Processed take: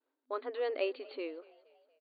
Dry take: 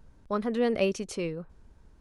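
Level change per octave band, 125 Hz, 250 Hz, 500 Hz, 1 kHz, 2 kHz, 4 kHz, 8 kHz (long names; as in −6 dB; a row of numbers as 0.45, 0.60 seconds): below −40 dB, −16.0 dB, −6.5 dB, −6.5 dB, −6.5 dB, −7.0 dB, below −35 dB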